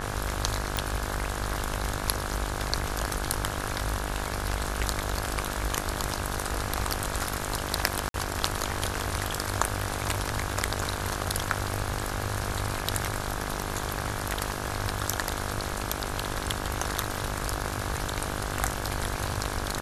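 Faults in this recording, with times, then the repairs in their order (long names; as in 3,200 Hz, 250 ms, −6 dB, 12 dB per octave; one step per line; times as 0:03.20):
mains buzz 50 Hz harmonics 34 −35 dBFS
0:00.77: click
0:08.09–0:08.14: drop-out 52 ms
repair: click removal
hum removal 50 Hz, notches 34
repair the gap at 0:08.09, 52 ms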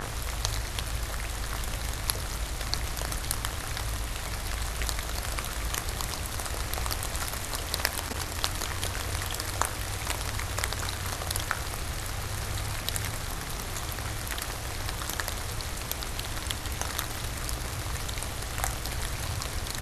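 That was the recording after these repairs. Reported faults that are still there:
none of them is left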